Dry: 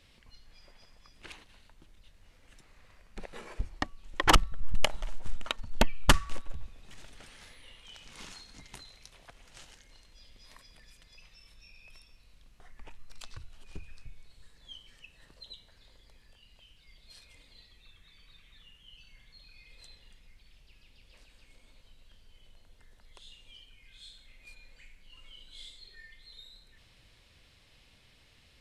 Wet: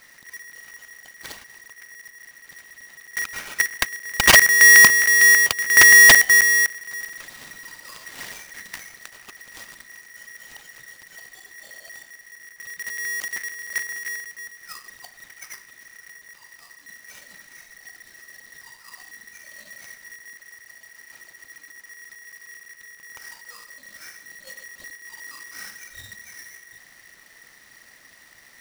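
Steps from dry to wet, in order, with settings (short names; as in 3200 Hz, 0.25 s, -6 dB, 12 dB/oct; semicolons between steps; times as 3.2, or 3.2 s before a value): half-waves squared off; polarity switched at an audio rate 1900 Hz; gain +5.5 dB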